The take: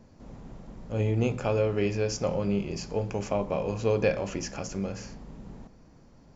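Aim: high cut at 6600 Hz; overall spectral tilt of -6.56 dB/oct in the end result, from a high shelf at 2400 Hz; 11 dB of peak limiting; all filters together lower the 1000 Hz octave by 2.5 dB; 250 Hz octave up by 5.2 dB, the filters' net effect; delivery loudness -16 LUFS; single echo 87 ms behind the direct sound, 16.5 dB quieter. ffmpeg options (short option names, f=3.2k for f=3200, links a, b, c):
-af "lowpass=6.6k,equalizer=f=250:t=o:g=7,equalizer=f=1k:t=o:g=-4.5,highshelf=f=2.4k:g=3,alimiter=limit=-21.5dB:level=0:latency=1,aecho=1:1:87:0.15,volume=16.5dB"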